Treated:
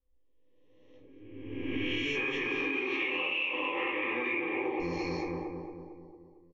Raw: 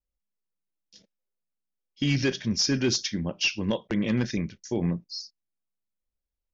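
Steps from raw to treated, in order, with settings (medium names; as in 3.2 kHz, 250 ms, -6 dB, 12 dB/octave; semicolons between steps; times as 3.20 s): reverse spectral sustain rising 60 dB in 1.56 s; 2.15–4.80 s: cabinet simulation 300–2800 Hz, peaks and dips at 340 Hz +6 dB, 800 Hz +8 dB, 1.2 kHz +10 dB, 2.3 kHz +8 dB; feedback delay 226 ms, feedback 56%, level -9.5 dB; level-controlled noise filter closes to 700 Hz, open at -18.5 dBFS; peak limiter -19.5 dBFS, peak gain reduction 11 dB; bass shelf 400 Hz -9.5 dB; static phaser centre 1 kHz, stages 8; simulated room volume 150 m³, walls furnished, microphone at 2.1 m; compression 12:1, threshold -37 dBFS, peak gain reduction 16.5 dB; trim +8 dB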